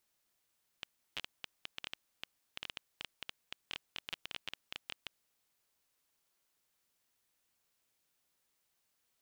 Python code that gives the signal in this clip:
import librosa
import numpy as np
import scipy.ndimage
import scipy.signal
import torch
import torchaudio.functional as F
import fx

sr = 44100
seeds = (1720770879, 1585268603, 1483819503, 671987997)

y = fx.geiger_clicks(sr, seeds[0], length_s=4.49, per_s=10.0, level_db=-22.5)